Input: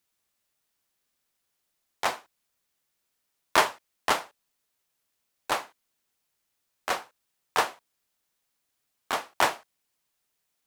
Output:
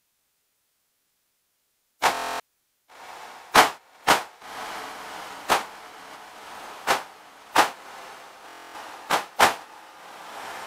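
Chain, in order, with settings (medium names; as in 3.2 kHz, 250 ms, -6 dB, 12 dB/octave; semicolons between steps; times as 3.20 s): formant-preserving pitch shift -6 st; echo that smears into a reverb 1166 ms, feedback 51%, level -15 dB; buffer glitch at 2.12/8.47 s, samples 1024, times 11; trim +7.5 dB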